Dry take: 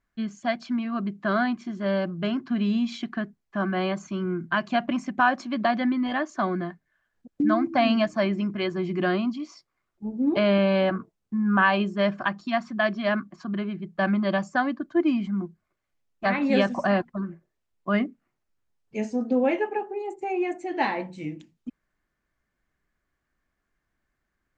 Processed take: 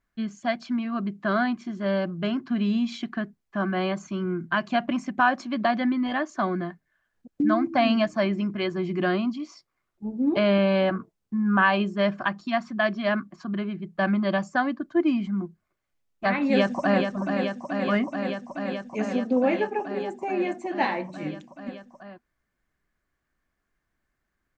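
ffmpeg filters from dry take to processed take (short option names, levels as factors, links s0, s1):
-filter_complex "[0:a]asplit=2[s0][s1];[s1]afade=t=in:st=16.4:d=0.01,afade=t=out:st=17.05:d=0.01,aecho=0:1:430|860|1290|1720|2150|2580|3010|3440|3870|4300|4730|5160:0.501187|0.426009|0.362108|0.307792|0.261623|0.222379|0.189023|0.160669|0.136569|0.116083|0.0986709|0.0838703[s2];[s0][s2]amix=inputs=2:normalize=0"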